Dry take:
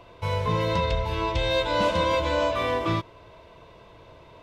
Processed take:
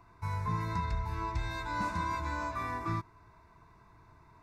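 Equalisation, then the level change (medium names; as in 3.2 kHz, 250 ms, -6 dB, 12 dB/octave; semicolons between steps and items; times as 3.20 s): static phaser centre 1.3 kHz, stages 4; -6.0 dB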